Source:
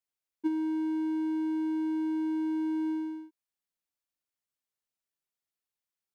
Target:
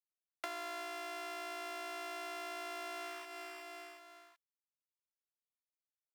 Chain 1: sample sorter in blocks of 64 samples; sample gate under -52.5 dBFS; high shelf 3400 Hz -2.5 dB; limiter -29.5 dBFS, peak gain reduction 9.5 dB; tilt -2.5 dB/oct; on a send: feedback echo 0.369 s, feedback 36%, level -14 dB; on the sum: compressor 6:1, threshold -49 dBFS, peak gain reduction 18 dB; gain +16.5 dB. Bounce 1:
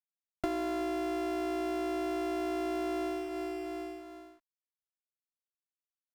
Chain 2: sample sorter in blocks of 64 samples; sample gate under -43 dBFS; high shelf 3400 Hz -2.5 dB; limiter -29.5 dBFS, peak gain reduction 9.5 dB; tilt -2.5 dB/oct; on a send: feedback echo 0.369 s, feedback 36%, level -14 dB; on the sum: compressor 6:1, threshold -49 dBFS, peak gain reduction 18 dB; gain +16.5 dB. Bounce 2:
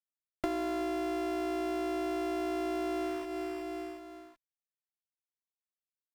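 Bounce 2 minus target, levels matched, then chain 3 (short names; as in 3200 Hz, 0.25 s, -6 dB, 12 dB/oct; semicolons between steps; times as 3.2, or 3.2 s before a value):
1000 Hz band -3.0 dB
sample sorter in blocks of 64 samples; sample gate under -43 dBFS; high shelf 3400 Hz -2.5 dB; limiter -29.5 dBFS, peak gain reduction 9.5 dB; tilt -2.5 dB/oct; on a send: feedback echo 0.369 s, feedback 36%, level -14 dB; on the sum: compressor 6:1, threshold -49 dBFS, peak gain reduction 18 dB; HPF 1100 Hz 12 dB/oct; gain +16.5 dB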